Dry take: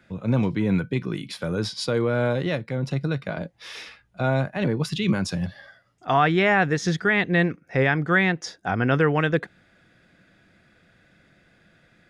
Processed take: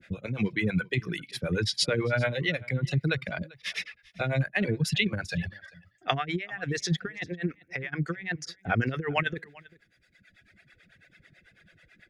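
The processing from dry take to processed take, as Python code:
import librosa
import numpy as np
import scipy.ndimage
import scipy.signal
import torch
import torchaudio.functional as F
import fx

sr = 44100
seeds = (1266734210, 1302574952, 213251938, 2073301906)

p1 = fx.dereverb_blind(x, sr, rt60_s=1.5)
p2 = fx.graphic_eq(p1, sr, hz=(250, 1000, 2000), db=(-5, -11, 8))
p3 = fx.over_compress(p2, sr, threshold_db=-26.0, ratio=-0.5)
p4 = fx.harmonic_tremolo(p3, sr, hz=9.1, depth_pct=100, crossover_hz=410.0)
p5 = p4 + fx.echo_single(p4, sr, ms=393, db=-23.0, dry=0)
y = p5 * 10.0 ** (3.5 / 20.0)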